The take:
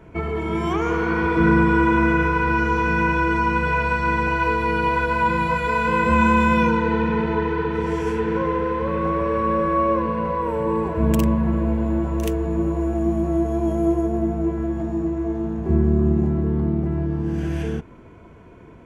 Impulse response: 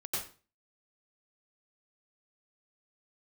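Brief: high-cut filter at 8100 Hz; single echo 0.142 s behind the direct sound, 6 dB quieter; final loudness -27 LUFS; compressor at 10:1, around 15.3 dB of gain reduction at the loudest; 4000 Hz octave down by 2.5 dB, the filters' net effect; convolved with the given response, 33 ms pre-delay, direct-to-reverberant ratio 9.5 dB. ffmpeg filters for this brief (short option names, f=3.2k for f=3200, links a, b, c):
-filter_complex "[0:a]lowpass=8.1k,equalizer=f=4k:t=o:g=-3.5,acompressor=threshold=-29dB:ratio=10,aecho=1:1:142:0.501,asplit=2[a][b];[1:a]atrim=start_sample=2205,adelay=33[c];[b][c]afir=irnorm=-1:irlink=0,volume=-12.5dB[d];[a][d]amix=inputs=2:normalize=0,volume=4.5dB"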